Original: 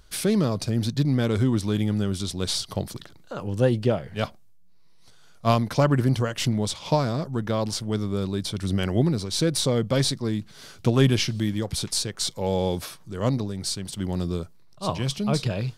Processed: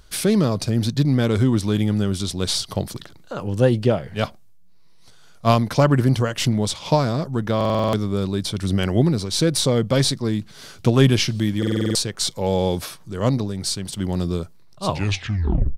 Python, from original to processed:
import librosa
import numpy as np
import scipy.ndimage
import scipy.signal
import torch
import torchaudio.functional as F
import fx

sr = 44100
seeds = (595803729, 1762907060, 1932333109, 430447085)

y = fx.tape_stop_end(x, sr, length_s=0.89)
y = fx.buffer_glitch(y, sr, at_s=(7.56, 11.58), block=2048, repeats=7)
y = y * librosa.db_to_amplitude(4.0)